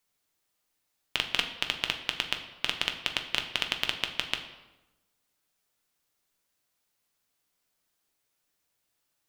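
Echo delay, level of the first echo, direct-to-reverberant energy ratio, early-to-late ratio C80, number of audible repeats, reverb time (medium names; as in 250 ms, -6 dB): no echo, no echo, 4.5 dB, 11.5 dB, no echo, 1.0 s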